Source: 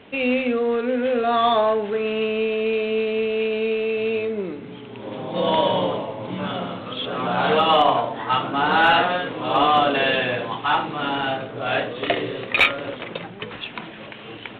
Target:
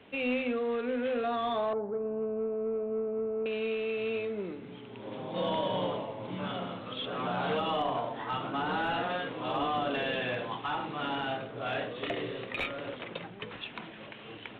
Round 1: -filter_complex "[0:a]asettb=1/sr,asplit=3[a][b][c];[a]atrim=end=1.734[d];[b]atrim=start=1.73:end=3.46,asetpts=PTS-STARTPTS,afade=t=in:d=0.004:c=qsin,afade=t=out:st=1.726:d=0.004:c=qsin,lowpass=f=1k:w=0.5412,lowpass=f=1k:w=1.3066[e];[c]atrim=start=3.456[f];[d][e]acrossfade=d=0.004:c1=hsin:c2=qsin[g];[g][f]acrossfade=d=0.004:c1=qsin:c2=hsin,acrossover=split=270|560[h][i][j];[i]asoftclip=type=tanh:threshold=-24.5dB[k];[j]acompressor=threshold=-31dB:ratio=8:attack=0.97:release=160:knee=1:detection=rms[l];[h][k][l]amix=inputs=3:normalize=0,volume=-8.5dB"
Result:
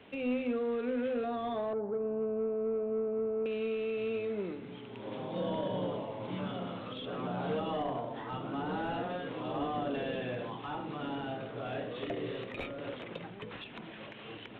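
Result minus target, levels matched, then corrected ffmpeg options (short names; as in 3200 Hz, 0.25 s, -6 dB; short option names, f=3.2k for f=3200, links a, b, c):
compressor: peak gain reduction +9.5 dB
-filter_complex "[0:a]asettb=1/sr,asplit=3[a][b][c];[a]atrim=end=1.734[d];[b]atrim=start=1.73:end=3.46,asetpts=PTS-STARTPTS,afade=t=in:d=0.004:c=qsin,afade=t=out:st=1.726:d=0.004:c=qsin,lowpass=f=1k:w=0.5412,lowpass=f=1k:w=1.3066[e];[c]atrim=start=3.456[f];[d][e]acrossfade=d=0.004:c1=hsin:c2=qsin[g];[g][f]acrossfade=d=0.004:c1=qsin:c2=hsin,acrossover=split=270|560[h][i][j];[i]asoftclip=type=tanh:threshold=-24.5dB[k];[j]acompressor=threshold=-20dB:ratio=8:attack=0.97:release=160:knee=1:detection=rms[l];[h][k][l]amix=inputs=3:normalize=0,volume=-8.5dB"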